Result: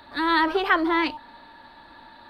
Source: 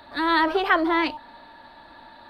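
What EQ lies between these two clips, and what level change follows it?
bell 650 Hz -5.5 dB 0.39 oct; 0.0 dB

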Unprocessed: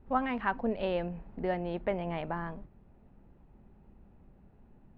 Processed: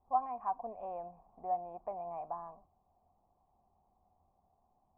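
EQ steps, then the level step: vocal tract filter a; bell 82 Hz +13.5 dB 0.21 oct; +5.0 dB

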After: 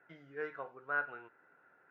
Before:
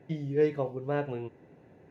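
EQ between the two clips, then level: band-pass 1400 Hz, Q 14; +15.5 dB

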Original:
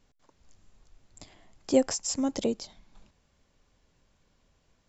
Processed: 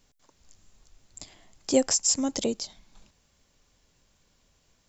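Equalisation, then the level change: high shelf 3800 Hz +11 dB; 0.0 dB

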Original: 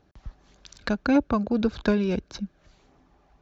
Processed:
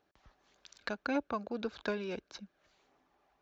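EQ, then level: tone controls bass -11 dB, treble -7 dB; tilt +2 dB/oct; low shelf 490 Hz +3 dB; -8.5 dB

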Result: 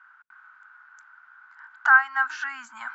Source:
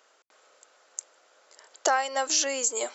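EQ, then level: elliptic band-stop 210–910 Hz, stop band 50 dB; synth low-pass 1500 Hz, resonance Q 11; 0.0 dB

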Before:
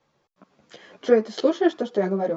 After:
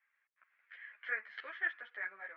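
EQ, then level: Butterworth band-pass 1900 Hz, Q 2.5; air absorption 130 m; +2.5 dB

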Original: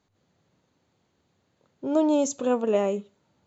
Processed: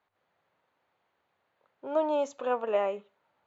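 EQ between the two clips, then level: air absorption 110 m; three-band isolator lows -20 dB, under 560 Hz, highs -17 dB, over 2900 Hz; high shelf 5800 Hz +6 dB; +2.0 dB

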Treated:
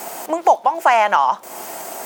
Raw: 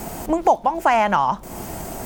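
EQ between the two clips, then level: HPF 550 Hz 12 dB/oct; +4.0 dB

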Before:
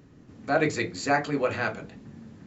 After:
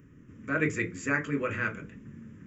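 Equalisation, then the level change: fixed phaser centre 1800 Hz, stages 4; 0.0 dB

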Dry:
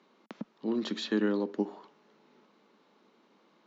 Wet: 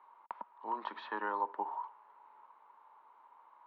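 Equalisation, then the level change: ladder band-pass 1000 Hz, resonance 80%; air absorption 200 m; +13.0 dB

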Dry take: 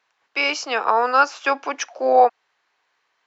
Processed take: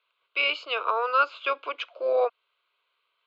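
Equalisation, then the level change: synth low-pass 3800 Hz, resonance Q 1.7; low shelf 220 Hz -8 dB; fixed phaser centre 1200 Hz, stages 8; -4.5 dB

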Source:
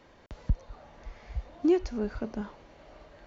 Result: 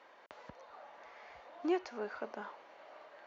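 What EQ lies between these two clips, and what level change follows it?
HPF 770 Hz 12 dB/oct; LPF 1500 Hz 6 dB/oct; +4.5 dB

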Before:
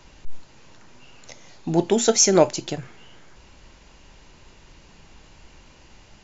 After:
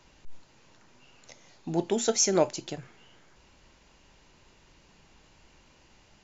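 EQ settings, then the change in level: low shelf 77 Hz -6 dB; -7.5 dB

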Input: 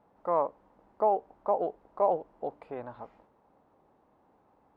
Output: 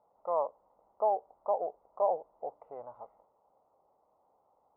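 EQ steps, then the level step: polynomial smoothing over 65 samples; air absorption 240 m; resonant low shelf 410 Hz -10.5 dB, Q 1.5; -3.5 dB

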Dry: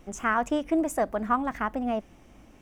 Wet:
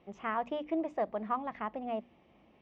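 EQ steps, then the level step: air absorption 59 m; speaker cabinet 110–3900 Hz, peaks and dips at 110 Hz -8 dB, 270 Hz -7 dB, 1500 Hz -10 dB; notches 60/120/180/240/300 Hz; -5.5 dB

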